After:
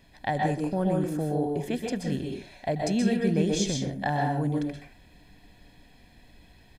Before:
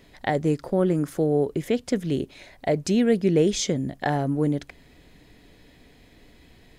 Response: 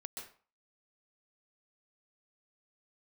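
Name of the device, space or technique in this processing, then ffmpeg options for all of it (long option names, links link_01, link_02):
microphone above a desk: -filter_complex "[0:a]aecho=1:1:1.2:0.51[link_01];[1:a]atrim=start_sample=2205[link_02];[link_01][link_02]afir=irnorm=-1:irlink=0"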